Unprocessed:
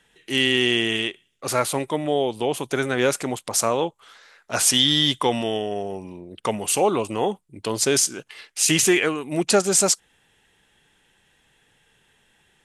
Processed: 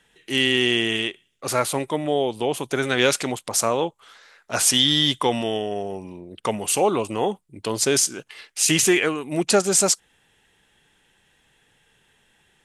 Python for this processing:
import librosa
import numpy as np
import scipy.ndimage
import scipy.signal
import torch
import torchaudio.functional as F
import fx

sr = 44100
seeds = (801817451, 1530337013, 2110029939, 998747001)

y = fx.peak_eq(x, sr, hz=3700.0, db=8.5, octaves=1.7, at=(2.83, 3.32))